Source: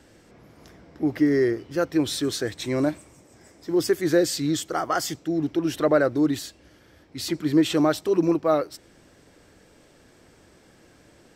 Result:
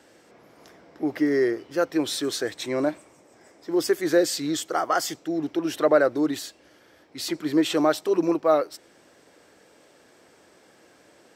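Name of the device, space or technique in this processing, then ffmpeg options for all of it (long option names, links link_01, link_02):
filter by subtraction: -filter_complex "[0:a]asplit=2[link_01][link_02];[link_02]lowpass=590,volume=-1[link_03];[link_01][link_03]amix=inputs=2:normalize=0,asettb=1/sr,asplit=3[link_04][link_05][link_06];[link_04]atrim=end=2.664[link_07];[link_05]atrim=start=2.66:end=3.72,asetpts=PTS-STARTPTS,afade=type=in:duration=0.004:curve=qsin,afade=type=out:start_time=1.056:duration=0.004:curve=qsin,highshelf=frequency=4800:gain=-6[link_08];[link_06]atrim=start=3.716[link_09];[link_07][link_08]acrossfade=duration=0.004:curve1=hsin:curve2=qsin[link_10];[link_10][link_09]acrossfade=duration=0.004:curve1=qsin:curve2=hsin"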